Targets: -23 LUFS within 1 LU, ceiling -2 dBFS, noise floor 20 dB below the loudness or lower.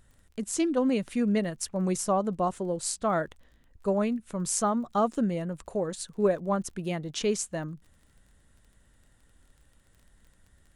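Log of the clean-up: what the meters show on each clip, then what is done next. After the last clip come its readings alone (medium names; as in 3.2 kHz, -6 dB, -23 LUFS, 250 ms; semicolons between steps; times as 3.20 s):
tick rate 27 per s; loudness -29.0 LUFS; peak level -11.0 dBFS; loudness target -23.0 LUFS
-> de-click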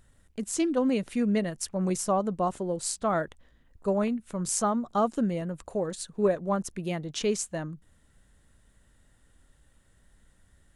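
tick rate 0.19 per s; loudness -29.0 LUFS; peak level -11.0 dBFS; loudness target -23.0 LUFS
-> trim +6 dB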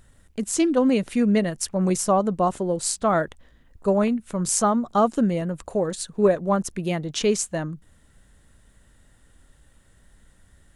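loudness -23.0 LUFS; peak level -5.0 dBFS; noise floor -57 dBFS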